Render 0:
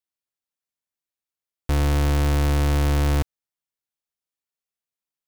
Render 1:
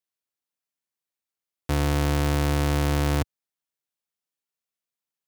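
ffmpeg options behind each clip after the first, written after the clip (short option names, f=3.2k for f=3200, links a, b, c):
-af "highpass=87"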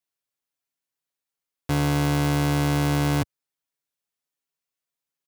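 -af "aecho=1:1:7.2:0.65"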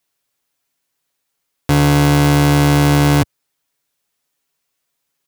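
-af "alimiter=level_in=16dB:limit=-1dB:release=50:level=0:latency=1,volume=-1.5dB"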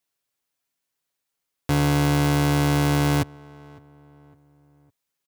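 -filter_complex "[0:a]asplit=2[a][b];[b]adelay=557,lowpass=f=1.8k:p=1,volume=-23dB,asplit=2[c][d];[d]adelay=557,lowpass=f=1.8k:p=1,volume=0.44,asplit=2[e][f];[f]adelay=557,lowpass=f=1.8k:p=1,volume=0.44[g];[a][c][e][g]amix=inputs=4:normalize=0,volume=-8dB"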